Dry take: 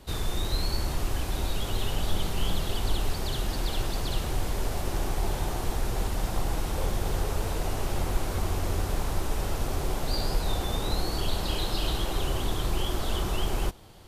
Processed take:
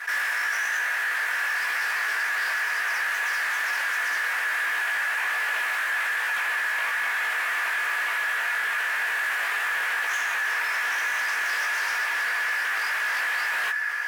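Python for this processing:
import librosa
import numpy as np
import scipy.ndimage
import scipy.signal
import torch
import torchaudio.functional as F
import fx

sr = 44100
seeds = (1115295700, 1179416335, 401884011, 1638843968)

p1 = fx.lower_of_two(x, sr, delay_ms=4.0)
p2 = fx.tilt_shelf(p1, sr, db=6.5, hz=1300.0)
p3 = p2 + fx.echo_diffused(p2, sr, ms=1346, feedback_pct=48, wet_db=-14.5, dry=0)
p4 = fx.rider(p3, sr, range_db=10, speed_s=0.5)
p5 = 10.0 ** (-25.0 / 20.0) * (np.abs((p4 / 10.0 ** (-25.0 / 20.0) + 3.0) % 4.0 - 2.0) - 1.0)
p6 = p5 * np.sin(2.0 * np.pi * 1700.0 * np.arange(len(p5)) / sr)
p7 = scipy.signal.sosfilt(scipy.signal.butter(2, 610.0, 'highpass', fs=sr, output='sos'), p6)
p8 = fx.high_shelf(p7, sr, hz=6900.0, db=4.0)
p9 = fx.doubler(p8, sr, ms=19.0, db=-4.0)
p10 = fx.env_flatten(p9, sr, amount_pct=50)
y = p10 * 10.0 ** (4.0 / 20.0)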